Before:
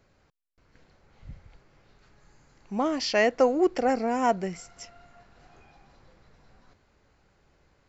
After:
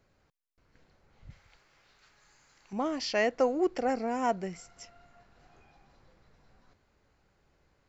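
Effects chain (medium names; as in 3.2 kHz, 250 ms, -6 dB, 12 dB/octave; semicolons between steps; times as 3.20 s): 1.30–2.73 s: tilt shelf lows -8.5 dB, about 700 Hz; trim -5 dB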